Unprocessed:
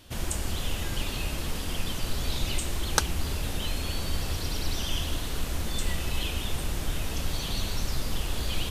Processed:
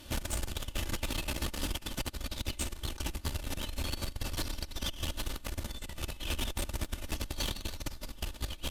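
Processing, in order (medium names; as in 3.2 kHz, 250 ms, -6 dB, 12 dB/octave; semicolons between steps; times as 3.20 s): comb 3.4 ms, depth 48%; compressor with a negative ratio -30 dBFS, ratio -0.5; valve stage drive 27 dB, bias 0.7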